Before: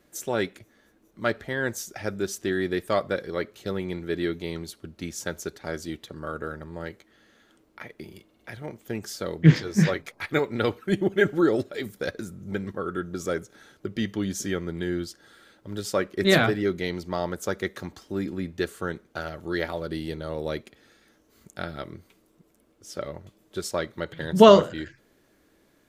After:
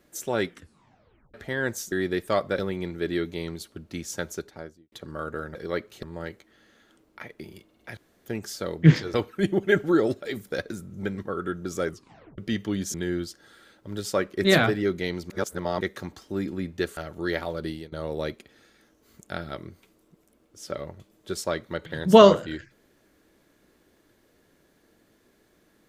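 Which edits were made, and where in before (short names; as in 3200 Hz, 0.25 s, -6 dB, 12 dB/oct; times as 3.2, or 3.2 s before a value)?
0.44 tape stop 0.90 s
1.92–2.52 cut
3.19–3.67 move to 6.63
5.37–6 studio fade out
8.57–8.86 room tone
9.74–10.63 cut
13.38 tape stop 0.49 s
14.43–14.74 cut
17.1–17.61 reverse
18.77–19.24 cut
19.94–20.19 fade out, to -21 dB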